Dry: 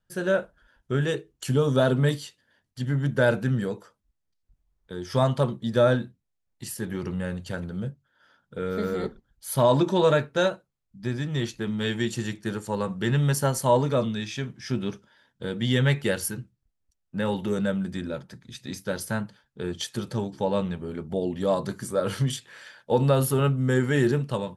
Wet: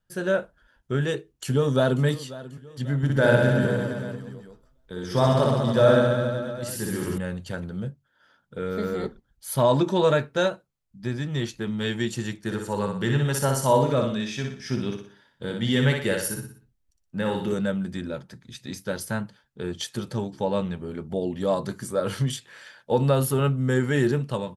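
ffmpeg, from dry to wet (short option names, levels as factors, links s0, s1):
-filter_complex "[0:a]asplit=2[s0][s1];[s1]afade=t=in:st=0.95:d=0.01,afade=t=out:st=2.03:d=0.01,aecho=0:1:540|1080|1620|2160:0.141254|0.0635642|0.0286039|0.0128717[s2];[s0][s2]amix=inputs=2:normalize=0,asettb=1/sr,asplit=3[s3][s4][s5];[s3]atrim=end=2.974[s6];[s4]atrim=start=2.97:end=7.18,asetpts=PTS-STARTPTS,afade=t=in:d=0.004:c=qsin,afade=t=out:st=4.206:d=0.004:c=qsin,aecho=1:1:60|126|198.6|278.5|366.3|462.9|569.2|686.2|814.8:0.794|0.631|0.501|0.398|0.316|0.251|0.2|0.158|0.126,atrim=end_sample=185661[s7];[s5]atrim=start=7.176[s8];[s6][s7]acrossfade=d=0.004:c1=hsin:c2=qsin[s9];[s9][s8]acrossfade=d=0.004:c1=qsin:c2=hsin,asettb=1/sr,asplit=3[s10][s11][s12];[s10]atrim=end=12.374[s13];[s11]atrim=start=12.37:end=17.54,asetpts=PTS-STARTPTS,afade=t=in:d=0.004:c=qsin,afade=t=out:st=5.166:d=0.004:c=qsin,aecho=1:1:60|120|180|240|300:0.562|0.236|0.0992|0.0417|0.0175,atrim=end_sample=227997[s14];[s12]atrim=start=17.536[s15];[s13][s14]acrossfade=d=0.004:c1=hsin:c2=qsin[s16];[s16][s15]acrossfade=d=0.004:c1=qsin:c2=hsin"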